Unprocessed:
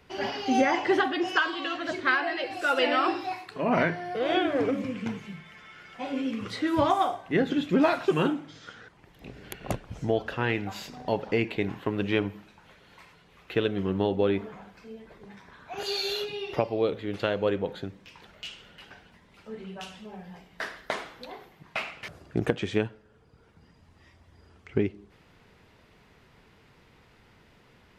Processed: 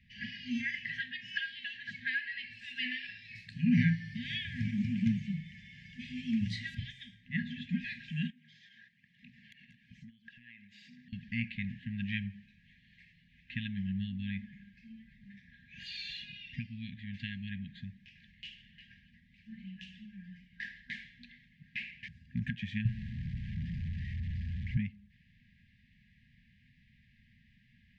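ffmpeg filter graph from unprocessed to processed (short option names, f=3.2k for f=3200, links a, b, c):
-filter_complex "[0:a]asettb=1/sr,asplit=3[a][b][c];[a]atrim=end=3.354[d];[b]atrim=start=3.35:end=6.75,asetpts=PTS-STARTPTS,afade=t=in:d=0.004:c=qsin,afade=t=out:st=3.396:d=0.004:c=qsin,highpass=48,bass=f=250:g=13,treble=f=4k:g=14[e];[c]atrim=start=6.746[f];[d][e]acrossfade=d=0.004:c1=hsin:c2=qsin[g];[g][f]acrossfade=d=0.004:c1=qsin:c2=hsin,asettb=1/sr,asplit=3[h][i][j];[h]atrim=end=8.304[k];[i]atrim=start=8.3:end=11.13,asetpts=PTS-STARTPTS,afade=t=in:d=0.004:c=qsin,afade=t=out:st=2.826:d=0.004:c=qsin,highpass=260,acompressor=threshold=-43dB:ratio=5:attack=3.2:release=140:knee=1:detection=peak,aphaser=in_gain=1:out_gain=1:delay=1.9:decay=0.29:speed=1.1:type=sinusoidal[l];[j]atrim=start=11.126[m];[k][l]acrossfade=d=0.004:c1=hsin:c2=qsin[n];[n][m]acrossfade=d=0.004:c1=qsin:c2=hsin,asettb=1/sr,asplit=3[o][p][q];[o]atrim=end=22.854[r];[p]atrim=start=22.85:end=24.77,asetpts=PTS-STARTPTS,afade=t=in:d=0.004:c=qsin,afade=t=out:st=1.916:d=0.004:c=qsin,aeval=exprs='val(0)+0.5*0.015*sgn(val(0))':c=same,acrossover=split=4700[s][t];[t]acompressor=threshold=-58dB:ratio=4:attack=1:release=60[u];[s][u]amix=inputs=2:normalize=0,lowshelf=f=230:t=q:w=1.5:g=10[v];[q]atrim=start=24.766[w];[r][v]acrossfade=d=0.004:c1=hsin:c2=qsin[x];[x][w]acrossfade=d=0.004:c1=qsin:c2=hsin,lowpass=2.8k,afftfilt=real='re*(1-between(b*sr/4096,250,1600))':imag='im*(1-between(b*sr/4096,250,1600))':win_size=4096:overlap=0.75,volume=-4dB"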